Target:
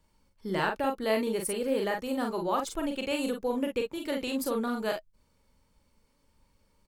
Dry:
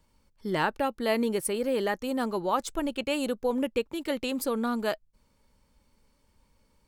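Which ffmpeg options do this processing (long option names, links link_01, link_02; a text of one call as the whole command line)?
ffmpeg -i in.wav -af "aecho=1:1:41|52:0.596|0.316,volume=-3dB" out.wav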